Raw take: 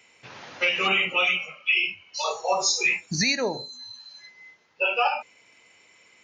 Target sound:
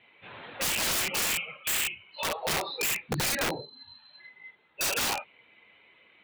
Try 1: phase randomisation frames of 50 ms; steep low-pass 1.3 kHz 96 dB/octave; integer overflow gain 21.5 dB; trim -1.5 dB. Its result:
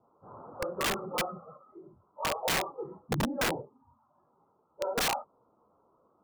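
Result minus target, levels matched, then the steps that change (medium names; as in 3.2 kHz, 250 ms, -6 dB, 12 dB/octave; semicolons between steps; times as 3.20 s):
1 kHz band +4.5 dB
change: steep low-pass 3.9 kHz 96 dB/octave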